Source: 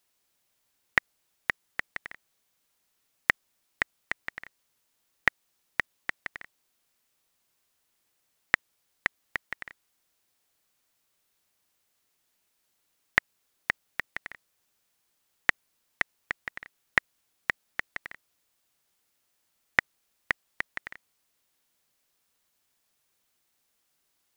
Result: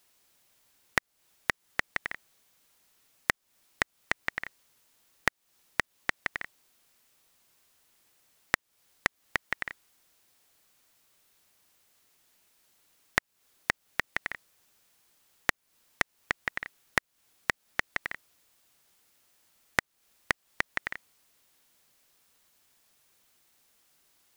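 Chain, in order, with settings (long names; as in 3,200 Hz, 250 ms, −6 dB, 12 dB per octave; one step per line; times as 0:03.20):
downward compressor 4 to 1, threshold −32 dBFS, peak gain reduction 14.5 dB
level +7.5 dB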